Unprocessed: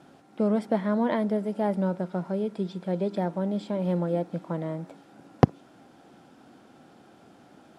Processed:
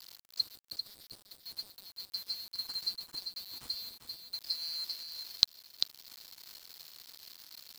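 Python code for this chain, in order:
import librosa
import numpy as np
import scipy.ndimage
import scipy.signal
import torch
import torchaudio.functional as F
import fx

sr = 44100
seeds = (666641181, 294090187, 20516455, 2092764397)

y = fx.band_swap(x, sr, width_hz=4000)
y = fx.env_lowpass_down(y, sr, base_hz=770.0, full_db=-22.5)
y = fx.peak_eq(y, sr, hz=590.0, db=-11.5, octaves=0.96)
y = fx.quant_dither(y, sr, seeds[0], bits=8, dither='none')
y = y + 10.0 ** (-6.5 / 20.0) * np.pad(y, (int(394 * sr / 1000.0), 0))[:len(y)]
y = F.gain(torch.from_numpy(y), 1.5).numpy()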